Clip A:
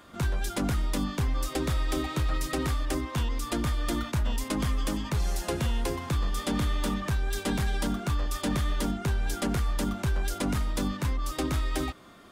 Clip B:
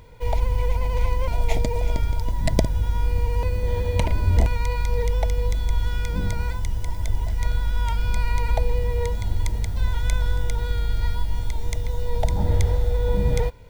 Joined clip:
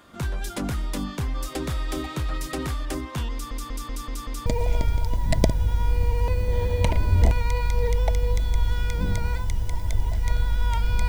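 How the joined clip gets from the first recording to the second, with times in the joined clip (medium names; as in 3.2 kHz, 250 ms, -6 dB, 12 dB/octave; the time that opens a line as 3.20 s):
clip A
3.32 s: stutter in place 0.19 s, 6 plays
4.46 s: go over to clip B from 1.61 s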